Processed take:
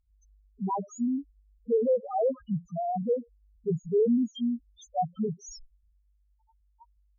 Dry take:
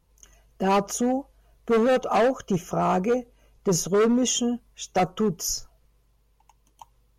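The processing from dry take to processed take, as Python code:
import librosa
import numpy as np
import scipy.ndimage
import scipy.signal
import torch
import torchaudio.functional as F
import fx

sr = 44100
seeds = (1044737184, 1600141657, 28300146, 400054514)

y = fx.spec_topn(x, sr, count=1)
y = fx.env_lowpass_down(y, sr, base_hz=2000.0, full_db=-28.5)
y = y * librosa.db_to_amplitude(2.0)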